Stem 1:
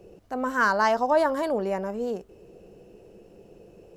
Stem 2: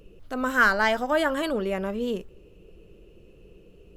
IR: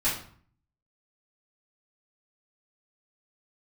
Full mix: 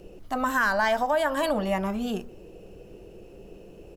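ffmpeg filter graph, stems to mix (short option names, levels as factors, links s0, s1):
-filter_complex "[0:a]acompressor=threshold=0.0708:ratio=6,volume=1.12,asplit=2[s0][s1];[s1]volume=0.106[s2];[1:a]highshelf=f=8500:g=6,adelay=0.4,volume=1.06[s3];[2:a]atrim=start_sample=2205[s4];[s2][s4]afir=irnorm=-1:irlink=0[s5];[s0][s3][s5]amix=inputs=3:normalize=0,alimiter=limit=0.2:level=0:latency=1:release=227"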